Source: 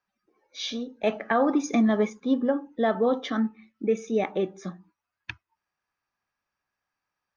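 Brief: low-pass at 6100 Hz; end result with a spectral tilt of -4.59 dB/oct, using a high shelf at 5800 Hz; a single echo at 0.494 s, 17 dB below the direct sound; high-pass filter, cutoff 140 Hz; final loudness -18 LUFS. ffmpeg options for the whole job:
-af "highpass=140,lowpass=6.1k,highshelf=f=5.8k:g=-8.5,aecho=1:1:494:0.141,volume=8.5dB"

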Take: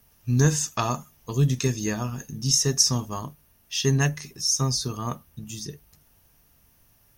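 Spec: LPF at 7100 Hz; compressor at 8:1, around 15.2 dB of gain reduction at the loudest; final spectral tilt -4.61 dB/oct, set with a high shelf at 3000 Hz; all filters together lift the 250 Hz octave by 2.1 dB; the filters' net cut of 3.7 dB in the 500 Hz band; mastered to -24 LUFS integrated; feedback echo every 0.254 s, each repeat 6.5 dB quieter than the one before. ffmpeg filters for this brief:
-af "lowpass=7.1k,equalizer=f=250:t=o:g=4.5,equalizer=f=500:t=o:g=-6.5,highshelf=f=3k:g=-8,acompressor=threshold=-31dB:ratio=8,aecho=1:1:254|508|762|1016|1270|1524:0.473|0.222|0.105|0.0491|0.0231|0.0109,volume=11.5dB"

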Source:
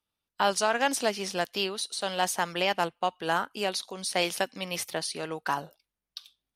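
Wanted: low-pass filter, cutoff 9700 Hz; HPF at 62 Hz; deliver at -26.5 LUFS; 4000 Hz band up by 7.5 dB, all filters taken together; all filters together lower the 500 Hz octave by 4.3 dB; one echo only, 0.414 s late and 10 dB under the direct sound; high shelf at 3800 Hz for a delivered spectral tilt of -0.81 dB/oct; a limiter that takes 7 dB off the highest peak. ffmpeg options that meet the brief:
-af "highpass=62,lowpass=9.7k,equalizer=f=500:t=o:g=-6,highshelf=f=3.8k:g=5,equalizer=f=4k:t=o:g=7,alimiter=limit=-14.5dB:level=0:latency=1,aecho=1:1:414:0.316,volume=1dB"

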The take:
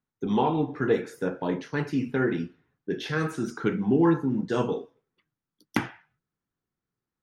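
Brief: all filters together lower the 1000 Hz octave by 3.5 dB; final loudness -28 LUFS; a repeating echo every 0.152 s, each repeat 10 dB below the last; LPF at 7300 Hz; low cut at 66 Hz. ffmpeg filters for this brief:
-af "highpass=66,lowpass=7.3k,equalizer=f=1k:t=o:g=-4.5,aecho=1:1:152|304|456|608:0.316|0.101|0.0324|0.0104,volume=-0.5dB"

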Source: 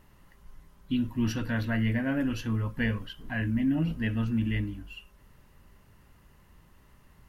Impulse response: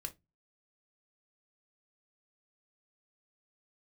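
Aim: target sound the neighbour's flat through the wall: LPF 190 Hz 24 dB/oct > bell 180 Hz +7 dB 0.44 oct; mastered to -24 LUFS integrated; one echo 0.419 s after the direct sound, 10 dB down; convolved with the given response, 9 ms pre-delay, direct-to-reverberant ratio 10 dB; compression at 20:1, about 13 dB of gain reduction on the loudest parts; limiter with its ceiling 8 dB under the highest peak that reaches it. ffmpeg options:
-filter_complex "[0:a]acompressor=threshold=-36dB:ratio=20,alimiter=level_in=12dB:limit=-24dB:level=0:latency=1,volume=-12dB,aecho=1:1:419:0.316,asplit=2[a][b];[1:a]atrim=start_sample=2205,adelay=9[c];[b][c]afir=irnorm=-1:irlink=0,volume=-7.5dB[d];[a][d]amix=inputs=2:normalize=0,lowpass=f=190:w=0.5412,lowpass=f=190:w=1.3066,equalizer=f=180:t=o:w=0.44:g=7,volume=21dB"

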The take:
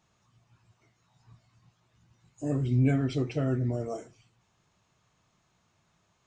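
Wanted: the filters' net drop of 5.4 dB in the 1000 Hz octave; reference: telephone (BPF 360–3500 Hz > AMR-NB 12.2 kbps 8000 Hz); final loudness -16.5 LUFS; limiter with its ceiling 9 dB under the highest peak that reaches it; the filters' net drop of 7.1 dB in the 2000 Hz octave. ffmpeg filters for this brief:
-af "equalizer=f=1k:t=o:g=-8,equalizer=f=2k:t=o:g=-6,alimiter=limit=-23dB:level=0:latency=1,highpass=360,lowpass=3.5k,volume=24dB" -ar 8000 -c:a libopencore_amrnb -b:a 12200

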